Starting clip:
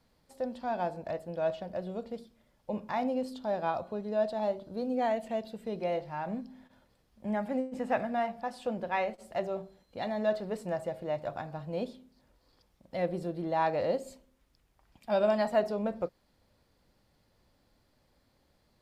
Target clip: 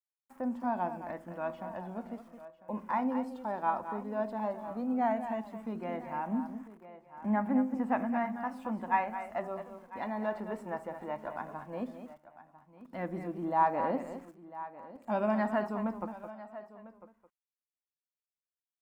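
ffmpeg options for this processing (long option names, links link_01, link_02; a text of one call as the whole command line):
ffmpeg -i in.wav -filter_complex "[0:a]highshelf=frequency=6400:gain=-6,asplit=2[link_01][link_02];[link_02]aecho=0:1:216:0.316[link_03];[link_01][link_03]amix=inputs=2:normalize=0,aeval=exprs='val(0)*gte(abs(val(0)),0.00168)':channel_layout=same,asplit=2[link_04][link_05];[link_05]aecho=0:1:999:0.141[link_06];[link_04][link_06]amix=inputs=2:normalize=0,aphaser=in_gain=1:out_gain=1:delay=2.2:decay=0.27:speed=0.14:type=sinusoidal,equalizer=frequency=125:width_type=o:width=1:gain=-11,equalizer=frequency=250:width_type=o:width=1:gain=12,equalizer=frequency=500:width_type=o:width=1:gain=-8,equalizer=frequency=1000:width_type=o:width=1:gain=11,equalizer=frequency=2000:width_type=o:width=1:gain=4,equalizer=frequency=4000:width_type=o:width=1:gain=-11,volume=-5dB" out.wav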